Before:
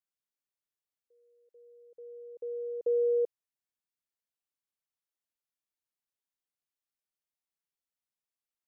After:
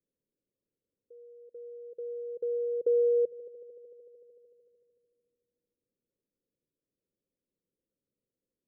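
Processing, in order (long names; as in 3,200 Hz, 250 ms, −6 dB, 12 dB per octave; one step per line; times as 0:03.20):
elliptic low-pass filter 530 Hz
mains-hum notches 50/100/150 Hz
echo machine with several playback heads 75 ms, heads all three, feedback 62%, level −23 dB
multiband upward and downward compressor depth 40%
level +6 dB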